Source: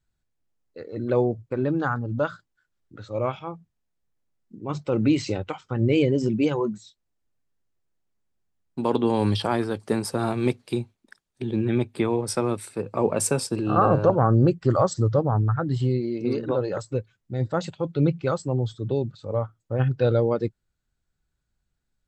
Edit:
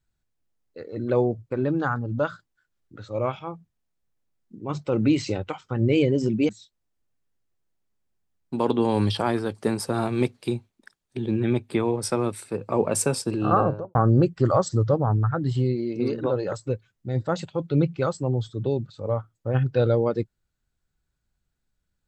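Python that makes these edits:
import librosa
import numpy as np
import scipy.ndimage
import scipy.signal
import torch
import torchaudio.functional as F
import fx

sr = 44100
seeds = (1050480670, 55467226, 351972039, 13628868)

y = fx.studio_fade_out(x, sr, start_s=13.75, length_s=0.45)
y = fx.edit(y, sr, fx.cut(start_s=6.49, length_s=0.25), tone=tone)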